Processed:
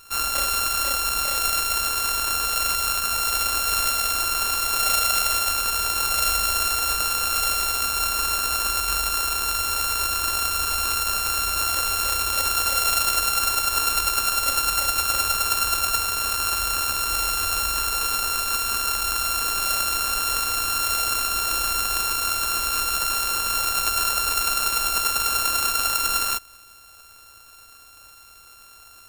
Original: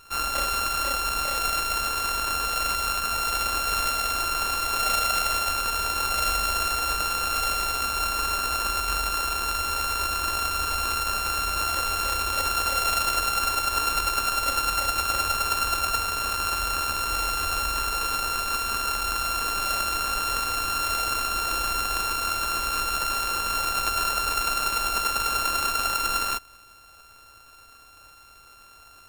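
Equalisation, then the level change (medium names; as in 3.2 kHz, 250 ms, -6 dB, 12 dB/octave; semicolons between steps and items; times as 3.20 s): treble shelf 4.3 kHz +9.5 dB; -1.0 dB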